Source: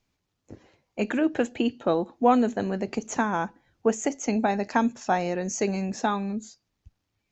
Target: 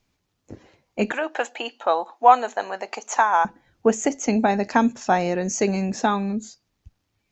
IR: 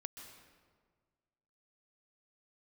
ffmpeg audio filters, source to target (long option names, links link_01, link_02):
-filter_complex "[0:a]asettb=1/sr,asplit=3[link_01][link_02][link_03];[link_01]atrim=end=1.124[link_04];[link_02]atrim=start=1.12:end=3.45,asetpts=PTS-STARTPTS,afade=type=in:duration=0.004:curve=qsin,afade=type=out:start_time=2.326:duration=0.004:curve=qsin,highpass=frequency=840:width_type=q:width=2[link_05];[link_03]atrim=start=3.446[link_06];[link_04][link_05]acrossfade=duration=0.004:curve1=hsin:curve2=qsin[link_07];[link_07][link_06]acrossfade=duration=0.004:curve1=qsin:curve2=hsin,volume=4.5dB"